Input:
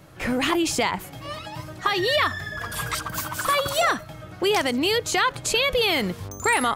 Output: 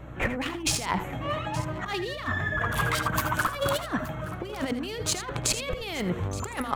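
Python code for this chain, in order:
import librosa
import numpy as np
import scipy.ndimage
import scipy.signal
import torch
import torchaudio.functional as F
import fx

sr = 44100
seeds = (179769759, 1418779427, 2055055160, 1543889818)

p1 = fx.wiener(x, sr, points=9)
p2 = fx.over_compress(p1, sr, threshold_db=-28.0, ratio=-0.5)
p3 = fx.add_hum(p2, sr, base_hz=60, snr_db=16)
y = p3 + fx.echo_multitap(p3, sr, ms=(75, 83, 873), db=(-14.5, -13.0, -17.0), dry=0)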